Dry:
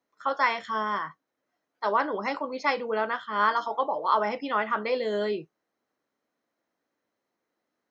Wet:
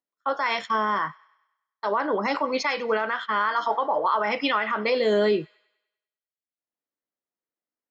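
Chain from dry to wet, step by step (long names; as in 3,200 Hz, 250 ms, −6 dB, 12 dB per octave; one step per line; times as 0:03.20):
noise gate −37 dBFS, range −45 dB
0:02.35–0:04.72: parametric band 2,000 Hz +7.5 dB 2.1 octaves
downward compressor 6 to 1, threshold −24 dBFS, peak gain reduction 11 dB
brickwall limiter −22.5 dBFS, peak gain reduction 8 dB
upward compression, threshold −42 dBFS
delay with a high-pass on its return 99 ms, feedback 70%, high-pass 1,400 Hz, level −22 dB
multiband upward and downward expander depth 70%
level +8 dB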